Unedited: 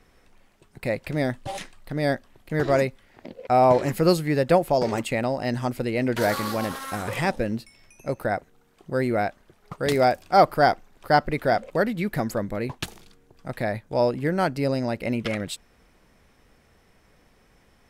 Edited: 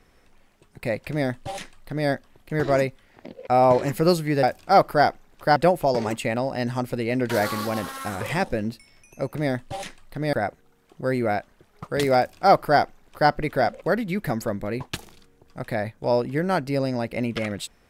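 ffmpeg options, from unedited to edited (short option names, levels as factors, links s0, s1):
-filter_complex "[0:a]asplit=5[s0][s1][s2][s3][s4];[s0]atrim=end=4.432[s5];[s1]atrim=start=10.058:end=11.192[s6];[s2]atrim=start=4.428:end=8.222[s7];[s3]atrim=start=1.098:end=2.082[s8];[s4]atrim=start=8.218[s9];[s5][s6]acrossfade=d=0.004:c1=hsin:c2=hsin[s10];[s10][s7]acrossfade=d=0.004:c1=hsin:c2=hsin[s11];[s11][s8]acrossfade=d=0.004:c1=hsin:c2=hsin[s12];[s12][s9]acrossfade=d=0.004:c1=hsin:c2=hsin"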